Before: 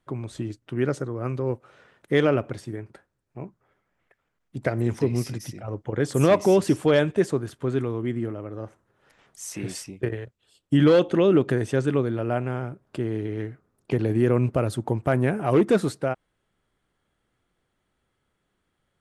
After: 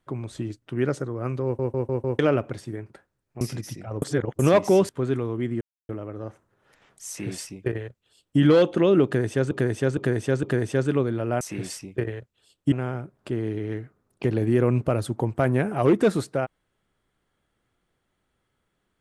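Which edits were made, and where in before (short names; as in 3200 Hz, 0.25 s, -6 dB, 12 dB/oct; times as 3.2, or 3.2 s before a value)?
1.44 stutter in place 0.15 s, 5 plays
3.41–5.18 cut
5.79–6.16 reverse
6.66–7.54 cut
8.26 insert silence 0.28 s
9.46–10.77 copy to 12.4
11.42–11.88 loop, 4 plays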